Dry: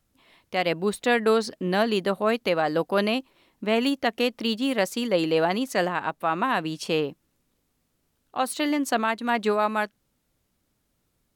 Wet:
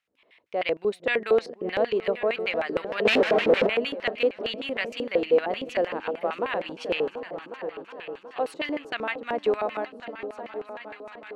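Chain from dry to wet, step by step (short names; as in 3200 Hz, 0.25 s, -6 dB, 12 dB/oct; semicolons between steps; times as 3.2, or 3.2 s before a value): repeats that get brighter 0.366 s, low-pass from 200 Hz, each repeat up 2 oct, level -6 dB; 3.05–3.67 sample leveller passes 5; LFO band-pass square 6.5 Hz 490–2300 Hz; gain +3.5 dB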